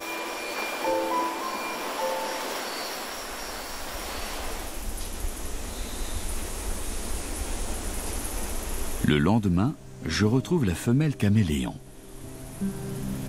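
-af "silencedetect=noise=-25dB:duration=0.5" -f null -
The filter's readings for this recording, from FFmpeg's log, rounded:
silence_start: 11.70
silence_end: 12.61 | silence_duration: 0.92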